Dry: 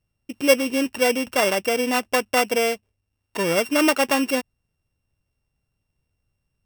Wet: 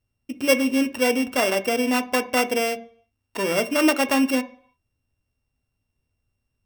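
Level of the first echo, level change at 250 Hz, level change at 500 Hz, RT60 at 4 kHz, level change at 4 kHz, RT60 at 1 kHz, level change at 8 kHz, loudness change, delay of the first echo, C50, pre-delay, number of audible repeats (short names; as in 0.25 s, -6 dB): none, +2.0 dB, -1.5 dB, 0.60 s, -1.5 dB, 0.70 s, -2.0 dB, -0.5 dB, none, 16.0 dB, 3 ms, none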